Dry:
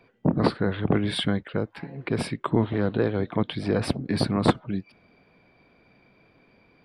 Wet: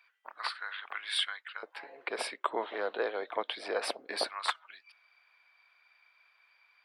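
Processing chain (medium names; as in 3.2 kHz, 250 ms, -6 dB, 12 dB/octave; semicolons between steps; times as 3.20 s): high-pass 1.2 kHz 24 dB/octave, from 1.63 s 520 Hz, from 4.29 s 1.1 kHz; trim -1.5 dB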